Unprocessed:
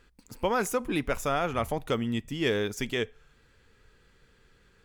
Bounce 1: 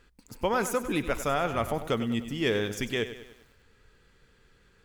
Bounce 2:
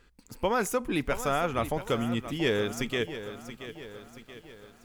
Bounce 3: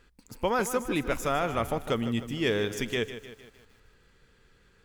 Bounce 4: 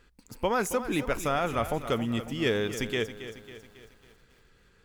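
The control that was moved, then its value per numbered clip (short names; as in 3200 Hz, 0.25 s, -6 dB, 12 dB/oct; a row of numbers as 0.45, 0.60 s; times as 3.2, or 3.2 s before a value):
lo-fi delay, time: 98, 679, 153, 274 ms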